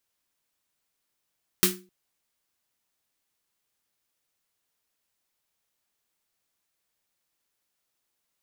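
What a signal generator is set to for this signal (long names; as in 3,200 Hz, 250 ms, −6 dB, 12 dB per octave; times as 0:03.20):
synth snare length 0.26 s, tones 190 Hz, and 360 Hz, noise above 1,200 Hz, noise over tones 6.5 dB, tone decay 0.37 s, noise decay 0.24 s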